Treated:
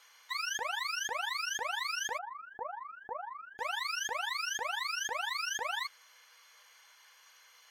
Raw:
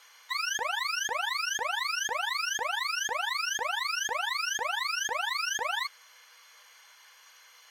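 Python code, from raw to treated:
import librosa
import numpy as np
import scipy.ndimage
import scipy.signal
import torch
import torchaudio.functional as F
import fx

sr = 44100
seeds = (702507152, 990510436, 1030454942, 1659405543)

y = fx.lowpass(x, sr, hz=1100.0, slope=24, at=(2.17, 3.58), fade=0.02)
y = y * 10.0 ** (-4.5 / 20.0)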